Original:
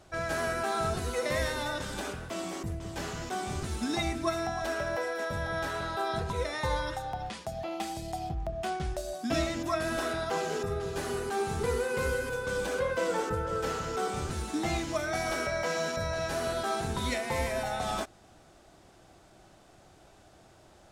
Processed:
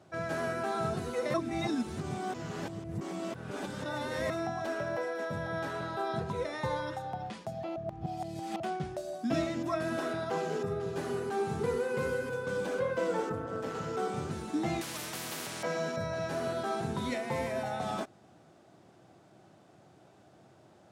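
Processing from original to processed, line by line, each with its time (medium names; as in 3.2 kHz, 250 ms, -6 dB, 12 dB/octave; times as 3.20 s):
1.34–4.30 s: reverse
7.76–8.60 s: reverse
13.32–13.75 s: AM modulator 200 Hz, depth 60%
14.81–15.63 s: spectrum-flattening compressor 10:1
whole clip: high-pass 120 Hz 24 dB/octave; tilt EQ -2 dB/octave; trim -3 dB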